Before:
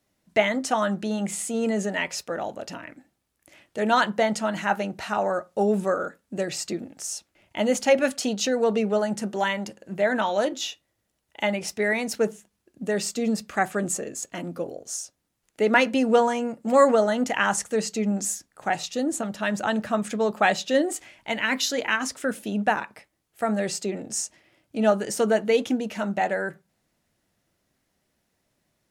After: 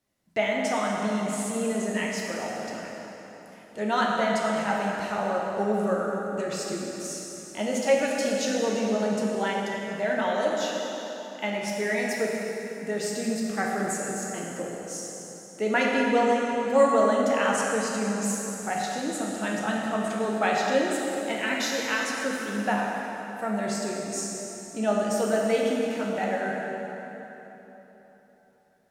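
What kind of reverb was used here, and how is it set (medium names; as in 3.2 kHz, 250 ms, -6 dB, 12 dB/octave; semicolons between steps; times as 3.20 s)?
plate-style reverb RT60 3.7 s, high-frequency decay 0.75×, DRR -3 dB; trim -6.5 dB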